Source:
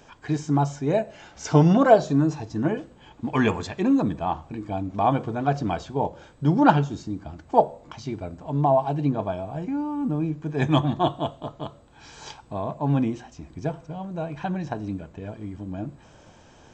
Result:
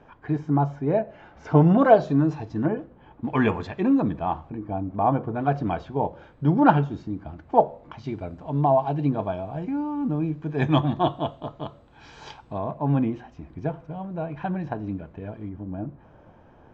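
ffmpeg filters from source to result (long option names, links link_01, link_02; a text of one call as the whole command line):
ffmpeg -i in.wav -af "asetnsamples=nb_out_samples=441:pad=0,asendcmd='1.78 lowpass f 3100;2.66 lowpass f 1500;3.24 lowpass f 2700;4.5 lowpass f 1400;5.35 lowpass f 2500;8.04 lowpass f 3800;12.58 lowpass f 2400;15.49 lowpass f 1400',lowpass=1700" out.wav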